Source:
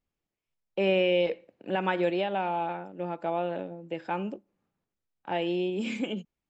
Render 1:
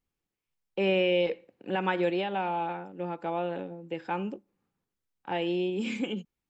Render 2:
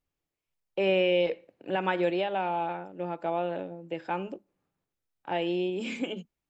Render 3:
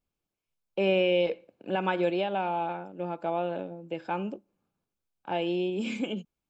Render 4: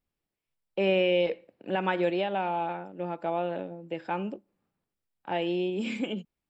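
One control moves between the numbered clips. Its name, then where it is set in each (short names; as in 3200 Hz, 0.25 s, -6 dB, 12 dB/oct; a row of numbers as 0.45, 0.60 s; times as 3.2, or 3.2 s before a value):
notch, frequency: 630, 210, 1900, 6400 Hz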